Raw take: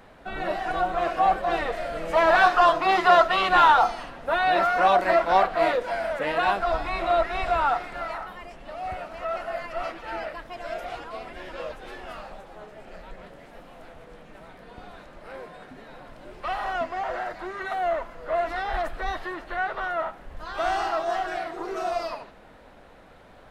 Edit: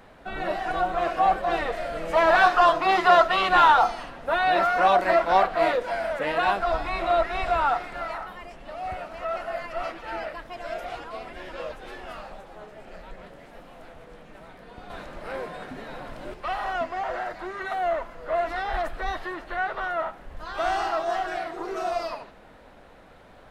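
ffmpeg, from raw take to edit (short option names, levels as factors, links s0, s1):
-filter_complex "[0:a]asplit=3[s0][s1][s2];[s0]atrim=end=14.902[s3];[s1]atrim=start=14.898:end=16.342,asetpts=PTS-STARTPTS,volume=2.11[s4];[s2]atrim=start=16.338[s5];[s3][s4]acrossfade=d=0.004:c1=hsin:c2=hsin[s6];[s6][s5]acrossfade=d=0.004:c1=hsin:c2=hsin"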